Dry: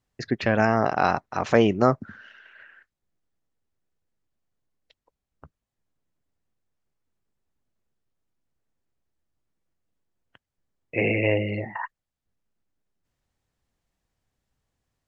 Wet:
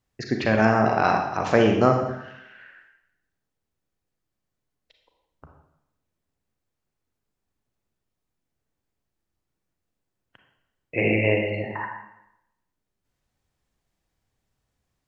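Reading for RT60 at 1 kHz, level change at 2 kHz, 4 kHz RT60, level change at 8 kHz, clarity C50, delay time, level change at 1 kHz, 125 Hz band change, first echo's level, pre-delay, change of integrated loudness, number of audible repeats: 0.85 s, +2.0 dB, 0.80 s, can't be measured, 4.5 dB, no echo audible, +2.0 dB, +1.5 dB, no echo audible, 27 ms, +1.5 dB, no echo audible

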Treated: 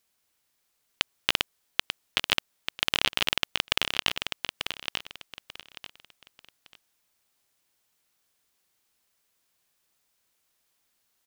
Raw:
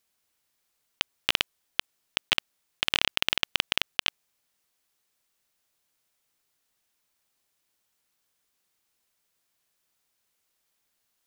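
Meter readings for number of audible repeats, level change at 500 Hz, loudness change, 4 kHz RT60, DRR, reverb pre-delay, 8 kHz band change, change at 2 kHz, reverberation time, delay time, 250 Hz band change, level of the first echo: 3, +2.5 dB, −0.5 dB, no reverb audible, no reverb audible, no reverb audible, +2.0 dB, +0.5 dB, no reverb audible, 890 ms, +2.5 dB, −6.5 dB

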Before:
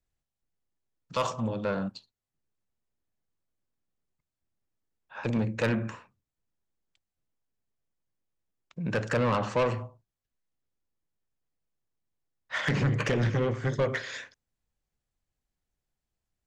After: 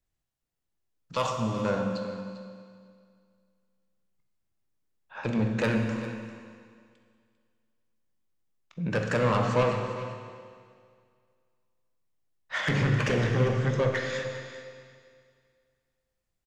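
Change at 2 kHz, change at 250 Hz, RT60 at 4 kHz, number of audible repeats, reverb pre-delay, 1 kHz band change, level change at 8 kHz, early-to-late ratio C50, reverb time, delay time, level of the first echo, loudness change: +2.0 dB, +2.0 dB, 2.0 s, 1, 15 ms, +2.0 dB, +1.5 dB, 4.5 dB, 2.1 s, 397 ms, −15.0 dB, +1.5 dB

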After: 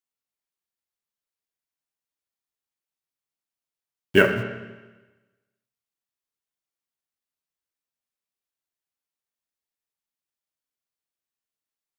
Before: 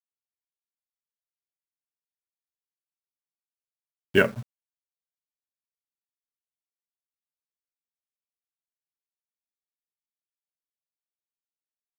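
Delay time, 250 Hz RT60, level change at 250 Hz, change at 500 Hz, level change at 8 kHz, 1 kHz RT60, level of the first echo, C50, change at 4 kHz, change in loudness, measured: no echo audible, 1.3 s, +4.0 dB, +3.5 dB, +3.0 dB, 1.2 s, no echo audible, 8.0 dB, +4.0 dB, +3.0 dB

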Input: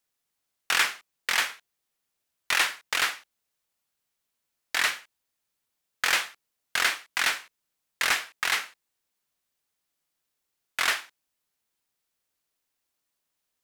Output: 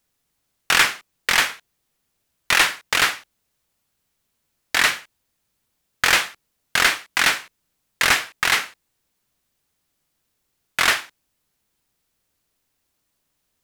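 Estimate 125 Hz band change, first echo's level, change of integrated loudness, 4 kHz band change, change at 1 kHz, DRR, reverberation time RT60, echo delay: can't be measured, no echo audible, +7.0 dB, +7.0 dB, +7.5 dB, no reverb audible, no reverb audible, no echo audible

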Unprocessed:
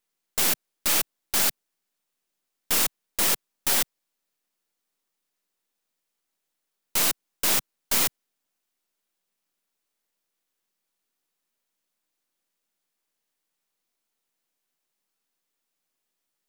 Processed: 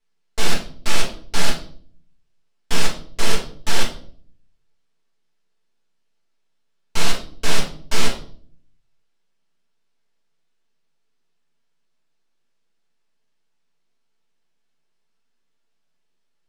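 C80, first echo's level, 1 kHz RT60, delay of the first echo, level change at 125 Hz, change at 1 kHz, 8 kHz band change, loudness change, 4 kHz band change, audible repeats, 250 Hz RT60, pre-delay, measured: 12.5 dB, no echo audible, 0.45 s, no echo audible, +14.5 dB, +5.0 dB, −3.5 dB, −2.0 dB, +3.0 dB, no echo audible, 0.75 s, 4 ms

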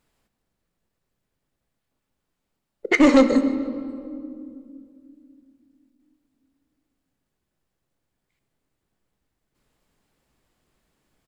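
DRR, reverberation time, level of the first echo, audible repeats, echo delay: 9.0 dB, 2.5 s, −18.5 dB, 1, 146 ms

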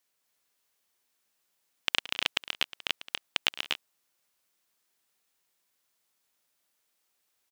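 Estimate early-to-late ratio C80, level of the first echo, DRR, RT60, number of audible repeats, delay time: no reverb audible, −17.0 dB, no reverb audible, no reverb audible, 3, 107 ms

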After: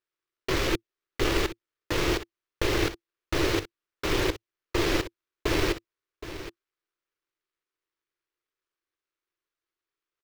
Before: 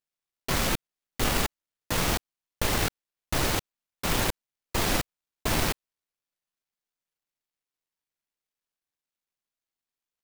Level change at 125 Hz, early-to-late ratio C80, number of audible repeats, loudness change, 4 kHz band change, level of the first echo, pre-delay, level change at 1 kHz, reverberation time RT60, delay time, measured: −1.0 dB, no reverb audible, 1, −0.5 dB, −0.5 dB, −13.0 dB, no reverb audible, −2.5 dB, no reverb audible, 770 ms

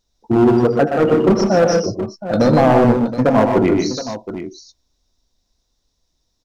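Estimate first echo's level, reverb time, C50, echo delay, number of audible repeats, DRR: −14.5 dB, no reverb audible, no reverb audible, 79 ms, 4, no reverb audible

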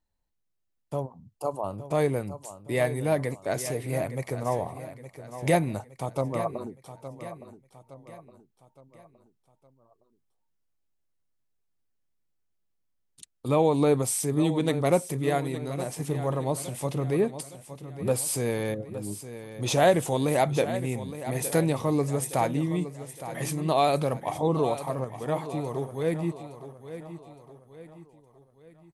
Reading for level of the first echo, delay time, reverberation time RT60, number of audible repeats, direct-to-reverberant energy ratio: −12.5 dB, 865 ms, no reverb audible, 4, no reverb audible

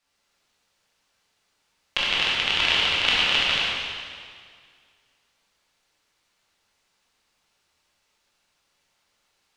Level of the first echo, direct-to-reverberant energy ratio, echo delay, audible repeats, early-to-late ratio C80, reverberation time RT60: no echo audible, −7.5 dB, no echo audible, no echo audible, −0.5 dB, 2.0 s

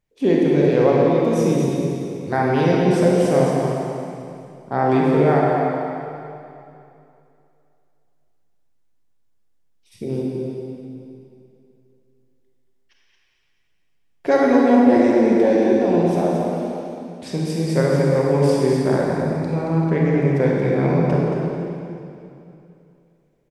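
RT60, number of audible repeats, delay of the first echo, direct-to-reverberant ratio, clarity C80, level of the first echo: 2.7 s, 1, 225 ms, −4.0 dB, −1.5 dB, −7.0 dB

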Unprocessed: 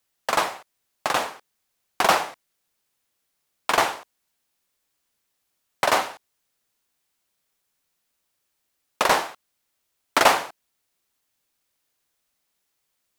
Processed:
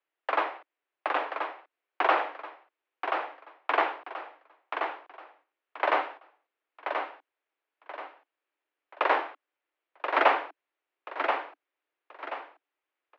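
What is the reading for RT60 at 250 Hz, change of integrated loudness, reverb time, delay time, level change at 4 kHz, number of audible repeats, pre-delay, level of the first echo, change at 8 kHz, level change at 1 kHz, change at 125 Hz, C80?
no reverb audible, −7.5 dB, no reverb audible, 1,031 ms, −12.0 dB, 4, no reverb audible, −6.0 dB, below −35 dB, −3.5 dB, below −40 dB, no reverb audible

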